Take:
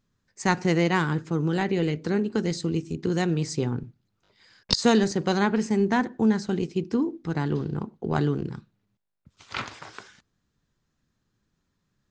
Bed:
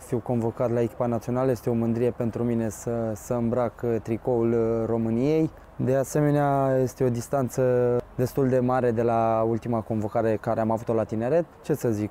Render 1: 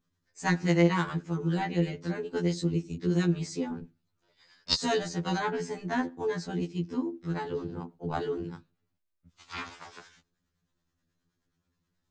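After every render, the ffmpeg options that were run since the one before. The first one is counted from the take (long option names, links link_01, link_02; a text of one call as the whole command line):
ffmpeg -i in.wav -filter_complex "[0:a]acrossover=split=560[link_01][link_02];[link_01]aeval=exprs='val(0)*(1-0.5/2+0.5/2*cos(2*PI*9.4*n/s))':channel_layout=same[link_03];[link_02]aeval=exprs='val(0)*(1-0.5/2-0.5/2*cos(2*PI*9.4*n/s))':channel_layout=same[link_04];[link_03][link_04]amix=inputs=2:normalize=0,afftfilt=real='re*2*eq(mod(b,4),0)':imag='im*2*eq(mod(b,4),0)':win_size=2048:overlap=0.75" out.wav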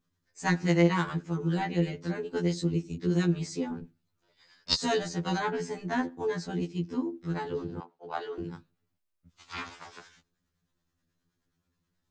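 ffmpeg -i in.wav -filter_complex "[0:a]asettb=1/sr,asplit=3[link_01][link_02][link_03];[link_01]atrim=end=7.804[link_04];[link_02]atrim=start=7.8:end=8.38,asetpts=PTS-STARTPTS,afade=type=in:duration=0.004:curve=qsin,afade=type=out:start_time=0.576:duration=0.004:curve=qsin,acrossover=split=450 6300:gain=0.0631 1 0.0891[link_05][link_06][link_07];[link_05][link_06][link_07]amix=inputs=3:normalize=0[link_08];[link_03]atrim=start=8.376[link_09];[link_04][link_08]acrossfade=duration=0.004:curve1=hsin:curve2=qsin[link_10];[link_10][link_09]acrossfade=duration=0.004:curve1=qsin:curve2=hsin" out.wav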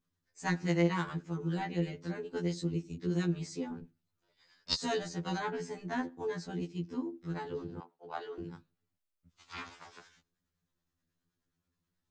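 ffmpeg -i in.wav -af "volume=-5.5dB" out.wav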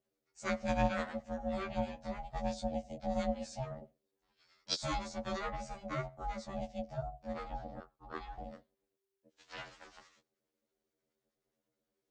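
ffmpeg -i in.wav -af "aeval=exprs='val(0)*sin(2*PI*390*n/s)':channel_layout=same" out.wav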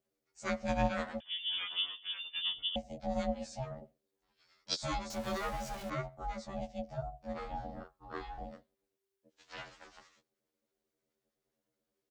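ffmpeg -i in.wav -filter_complex "[0:a]asettb=1/sr,asplit=3[link_01][link_02][link_03];[link_01]atrim=end=1.204[link_04];[link_02]atrim=start=1.2:end=2.76,asetpts=PTS-STARTPTS,afade=type=in:duration=0.004:curve=qsin,afade=type=out:start_time=1.556:duration=0.004:curve=qsin,lowpass=frequency=3100:width_type=q:width=0.5098,lowpass=frequency=3100:width_type=q:width=0.6013,lowpass=frequency=3100:width_type=q:width=0.9,lowpass=frequency=3100:width_type=q:width=2.563,afreqshift=-3600[link_05];[link_03]atrim=start=2.756[link_06];[link_04][link_05]acrossfade=duration=0.004:curve1=hsin:curve2=qsin[link_07];[link_07][link_06]acrossfade=duration=0.004:curve1=qsin:curve2=hsin,asettb=1/sr,asplit=3[link_08][link_09][link_10];[link_08]atrim=end=5.104[link_11];[link_09]atrim=start=5.1:end=5.9,asetpts=PTS-STARTPTS,afade=type=in:duration=0.004:curve=qsin,afade=type=out:start_time=0.796:duration=0.004:curve=qsin,aeval=exprs='val(0)+0.5*0.00794*sgn(val(0))':channel_layout=same[link_12];[link_10]atrim=start=5.896[link_13];[link_11][link_12]acrossfade=duration=0.004:curve1=hsin:curve2=qsin[link_14];[link_14][link_13]acrossfade=duration=0.004:curve1=qsin:curve2=hsin,asplit=3[link_15][link_16][link_17];[link_15]afade=type=out:start_time=7.41:duration=0.02[link_18];[link_16]asplit=2[link_19][link_20];[link_20]adelay=34,volume=-3.5dB[link_21];[link_19][link_21]amix=inputs=2:normalize=0,afade=type=in:start_time=7.41:duration=0.02,afade=type=out:start_time=8.45:duration=0.02[link_22];[link_17]afade=type=in:start_time=8.45:duration=0.02[link_23];[link_18][link_22][link_23]amix=inputs=3:normalize=0" out.wav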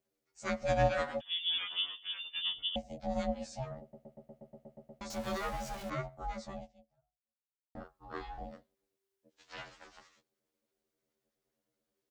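ffmpeg -i in.wav -filter_complex "[0:a]asettb=1/sr,asplit=3[link_01][link_02][link_03];[link_01]atrim=end=0.614[link_04];[link_02]atrim=start=0.61:end=1.58,asetpts=PTS-STARTPTS,afade=type=in:duration=0.004:curve=qsin,afade=type=out:start_time=0.966:duration=0.004:curve=qsin,aecho=1:1:7.1:0.99,atrim=end_sample=42777[link_05];[link_03]atrim=start=1.576[link_06];[link_04][link_05]acrossfade=duration=0.004:curve1=hsin:curve2=qsin[link_07];[link_07][link_06]acrossfade=duration=0.004:curve1=qsin:curve2=hsin,asplit=12[link_08][link_09][link_10][link_11][link_12][link_13][link_14][link_15][link_16][link_17][link_18][link_19];[link_08]atrim=end=3.932[link_20];[link_09]atrim=start=3.808:end=3.932[link_21];[link_10]atrim=start=3.808:end=3.932[link_22];[link_11]atrim=start=3.808:end=3.932[link_23];[link_12]atrim=start=3.808:end=3.932[link_24];[link_13]atrim=start=3.808:end=3.932[link_25];[link_14]atrim=start=3.808:end=3.932[link_26];[link_15]atrim=start=3.808:end=3.932[link_27];[link_16]atrim=start=3.808:end=3.932[link_28];[link_17]atrim=start=3.808:end=3.932[link_29];[link_18]atrim=start=5.008:end=7.75,asetpts=PTS-STARTPTS,afade=type=out:start_time=1.512:duration=1.23:curve=exp[link_30];[link_19]atrim=start=7.75,asetpts=PTS-STARTPTS,afade=type=in:duration=0.004:curve=hsin[link_31];[link_20][link_21]acrossfade=duration=0.004:curve1=hsin:curve2=hsin[link_32];[link_32][link_22]acrossfade=duration=0.004:curve1=hsin:curve2=hsin[link_33];[link_33][link_23]acrossfade=duration=0.004:curve1=hsin:curve2=hsin[link_34];[link_34][link_24]acrossfade=duration=0.004:curve1=hsin:curve2=hsin[link_35];[link_35][link_25]acrossfade=duration=0.004:curve1=hsin:curve2=hsin[link_36];[link_36][link_26]acrossfade=duration=0.004:curve1=hsin:curve2=hsin[link_37];[link_37][link_27]acrossfade=duration=0.004:curve1=hsin:curve2=hsin[link_38];[link_38][link_28]acrossfade=duration=0.004:curve1=hsin:curve2=hsin[link_39];[link_39][link_29]acrossfade=duration=0.004:curve1=hsin:curve2=hsin[link_40];[link_30][link_31]concat=n=2:v=0:a=1[link_41];[link_40][link_41]acrossfade=duration=0.004:curve1=hsin:curve2=hsin" out.wav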